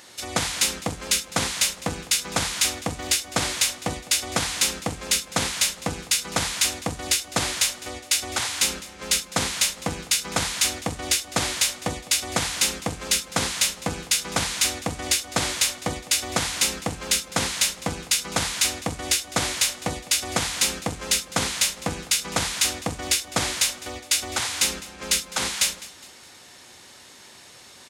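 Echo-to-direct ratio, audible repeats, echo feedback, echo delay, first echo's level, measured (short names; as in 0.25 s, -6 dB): -18.0 dB, 3, 41%, 0.206 s, -19.0 dB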